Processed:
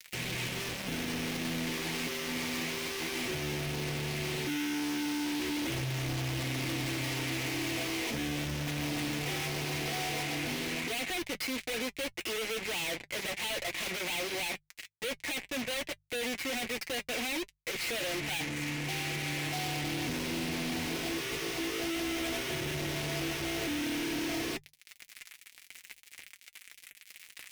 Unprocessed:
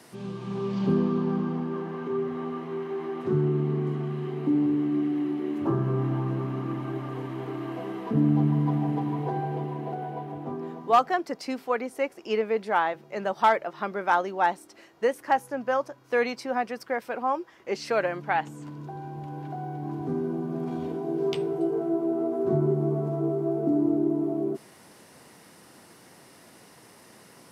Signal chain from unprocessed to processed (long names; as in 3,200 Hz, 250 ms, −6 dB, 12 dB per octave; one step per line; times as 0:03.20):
treble cut that deepens with the level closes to 1,600 Hz, closed at −23.5 dBFS
fuzz pedal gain 42 dB, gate −44 dBFS
high shelf with overshoot 1,700 Hz +8.5 dB, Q 3
gain into a clipping stage and back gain 27.5 dB
mains-hum notches 50/100/150 Hz
notch comb filter 200 Hz
level −5 dB